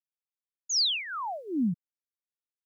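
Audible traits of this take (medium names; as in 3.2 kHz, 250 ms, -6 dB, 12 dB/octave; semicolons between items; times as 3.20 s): a quantiser's noise floor 12-bit, dither none; phasing stages 2, 1.3 Hz, lowest notch 420–1200 Hz; random flutter of the level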